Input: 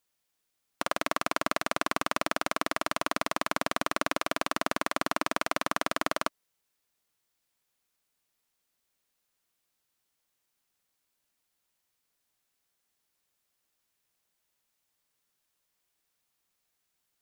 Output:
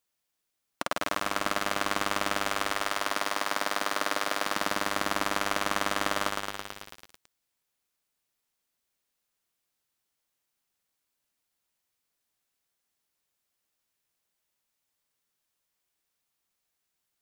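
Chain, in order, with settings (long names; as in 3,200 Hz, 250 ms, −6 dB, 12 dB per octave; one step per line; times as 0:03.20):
0:02.43–0:04.43: high-pass filter 280 Hz 12 dB per octave
feedback echo at a low word length 110 ms, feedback 80%, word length 6 bits, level −4 dB
level −2 dB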